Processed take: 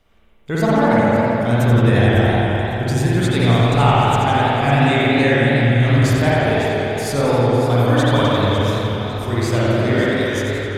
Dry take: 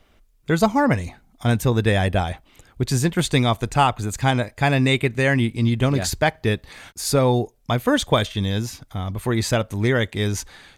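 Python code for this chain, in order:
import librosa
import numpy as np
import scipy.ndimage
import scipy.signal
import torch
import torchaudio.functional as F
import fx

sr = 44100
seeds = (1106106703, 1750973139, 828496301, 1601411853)

y = fx.echo_alternate(x, sr, ms=276, hz=850.0, feedback_pct=60, wet_db=-7.0)
y = fx.rev_spring(y, sr, rt60_s=3.1, pass_ms=(50,), chirp_ms=80, drr_db=-7.5)
y = fx.echo_warbled(y, sr, ms=87, feedback_pct=62, rate_hz=2.8, cents=144, wet_db=-7)
y = F.gain(torch.from_numpy(y), -5.0).numpy()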